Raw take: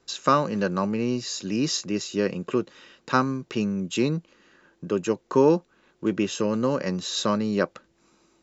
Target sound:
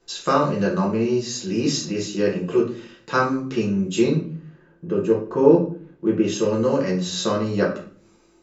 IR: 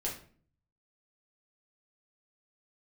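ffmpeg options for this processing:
-filter_complex "[0:a]asettb=1/sr,asplit=3[a][b][c];[a]atrim=end=4.154[d];[b]atrim=start=4.15:end=6.24,asetpts=PTS-STARTPTS,afade=t=in:d=0.004:c=qsin,afade=t=out:st=2.086:d=0.004:c=qsin,lowpass=f=1.3k:p=1[e];[c]atrim=start=6.236[f];[d][e]acrossfade=d=0.004:c1=hsin:c2=qsin[g];[g][f]acrossfade=d=0.004:c1=qsin:c2=hsin[h];[1:a]atrim=start_sample=2205[i];[h][i]afir=irnorm=-1:irlink=0"

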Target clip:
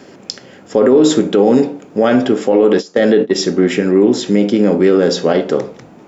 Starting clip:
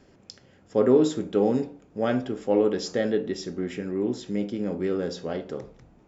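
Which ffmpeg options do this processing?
-filter_complex "[0:a]asettb=1/sr,asplit=3[a][b][c];[a]atrim=end=2.524[d];[b]atrim=start=2.52:end=3.35,asetpts=PTS-STARTPTS,afade=t=in:d=0.004:c=qsin,afade=t=out:st=0.826:d=0.004:c=qsin,agate=range=-22dB:threshold=-27dB:ratio=16:detection=peak[e];[c]atrim=start=3.346[f];[d][e]acrossfade=d=0.004:c1=hsin:c2=qsin[g];[g][f]acrossfade=d=0.004:c1=qsin:c2=hsin,highpass=190,alimiter=level_in=20dB:limit=-1dB:release=50:level=0:latency=1,volume=-1dB"

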